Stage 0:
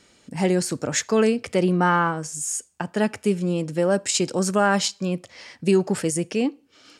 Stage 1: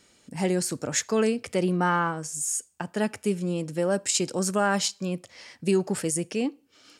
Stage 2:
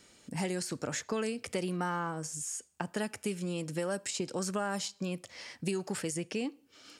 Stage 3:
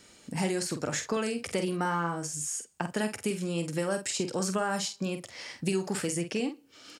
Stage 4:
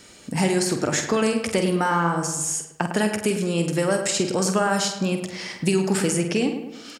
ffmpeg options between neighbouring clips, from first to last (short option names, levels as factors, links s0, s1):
-af "highshelf=f=9400:g=9.5,volume=0.596"
-filter_complex "[0:a]acrossover=split=1100|5200[s0][s1][s2];[s0]acompressor=threshold=0.0224:ratio=4[s3];[s1]acompressor=threshold=0.00891:ratio=4[s4];[s2]acompressor=threshold=0.00708:ratio=4[s5];[s3][s4][s5]amix=inputs=3:normalize=0"
-filter_complex "[0:a]asplit=2[s0][s1];[s1]adelay=47,volume=0.398[s2];[s0][s2]amix=inputs=2:normalize=0,volume=1.5"
-filter_complex "[0:a]asplit=2[s0][s1];[s1]adelay=105,lowpass=f=2300:p=1,volume=0.422,asplit=2[s2][s3];[s3]adelay=105,lowpass=f=2300:p=1,volume=0.52,asplit=2[s4][s5];[s5]adelay=105,lowpass=f=2300:p=1,volume=0.52,asplit=2[s6][s7];[s7]adelay=105,lowpass=f=2300:p=1,volume=0.52,asplit=2[s8][s9];[s9]adelay=105,lowpass=f=2300:p=1,volume=0.52,asplit=2[s10][s11];[s11]adelay=105,lowpass=f=2300:p=1,volume=0.52[s12];[s0][s2][s4][s6][s8][s10][s12]amix=inputs=7:normalize=0,volume=2.51"